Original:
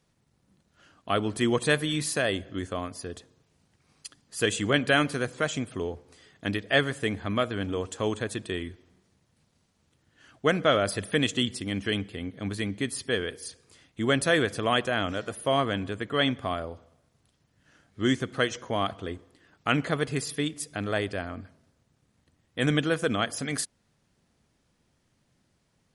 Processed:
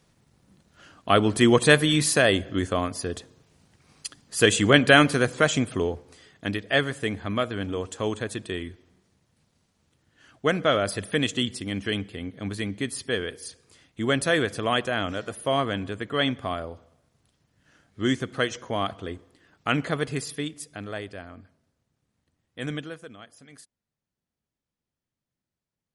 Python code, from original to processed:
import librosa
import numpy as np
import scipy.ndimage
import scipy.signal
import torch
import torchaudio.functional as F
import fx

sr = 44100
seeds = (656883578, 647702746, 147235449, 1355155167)

y = fx.gain(x, sr, db=fx.line((5.7, 7.0), (6.53, 0.5), (20.08, 0.5), (21.07, -7.0), (22.74, -7.0), (23.14, -19.0)))